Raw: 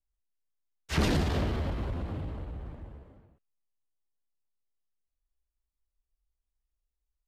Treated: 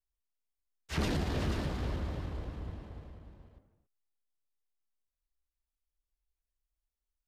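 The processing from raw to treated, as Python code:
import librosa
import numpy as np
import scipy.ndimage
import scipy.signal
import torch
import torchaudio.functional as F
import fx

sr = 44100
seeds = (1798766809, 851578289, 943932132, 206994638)

y = fx.reverse_delay_fb(x, sr, ms=149, feedback_pct=73, wet_db=-8.5, at=(1.07, 3.1))
y = y + 10.0 ** (-7.0 / 20.0) * np.pad(y, (int(485 * sr / 1000.0), 0))[:len(y)]
y = F.gain(torch.from_numpy(y), -5.5).numpy()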